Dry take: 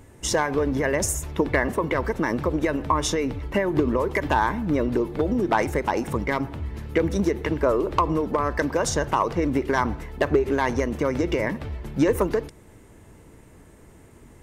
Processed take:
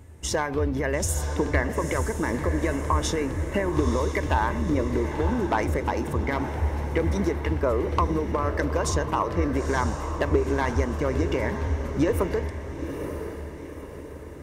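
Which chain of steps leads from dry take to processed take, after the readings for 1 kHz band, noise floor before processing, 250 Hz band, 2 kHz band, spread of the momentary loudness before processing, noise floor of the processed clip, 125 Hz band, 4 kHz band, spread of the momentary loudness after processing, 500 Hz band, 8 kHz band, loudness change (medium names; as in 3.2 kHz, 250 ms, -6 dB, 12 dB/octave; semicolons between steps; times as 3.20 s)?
-2.5 dB, -50 dBFS, -2.5 dB, -2.5 dB, 4 LU, -39 dBFS, +3.5 dB, -2.5 dB, 8 LU, -2.5 dB, -2.5 dB, -2.0 dB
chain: peaking EQ 81 Hz +14.5 dB 0.37 oct; on a send: echo that smears into a reverb 933 ms, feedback 49%, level -8 dB; on the sum: trim -3.5 dB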